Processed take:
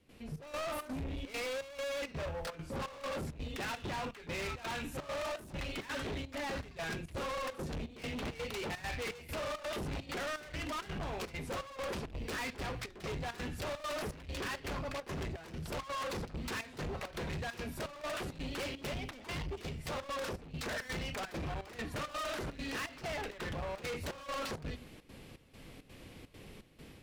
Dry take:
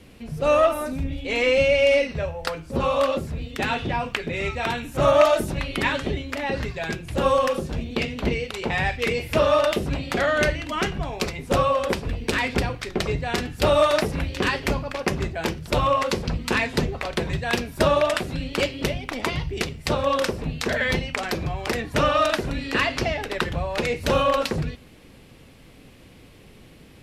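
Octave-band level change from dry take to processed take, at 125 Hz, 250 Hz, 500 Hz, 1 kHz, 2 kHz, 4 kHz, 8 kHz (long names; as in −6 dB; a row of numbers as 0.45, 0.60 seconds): −14.0, −15.0, −18.5, −16.0, −15.0, −14.0, −11.0 decibels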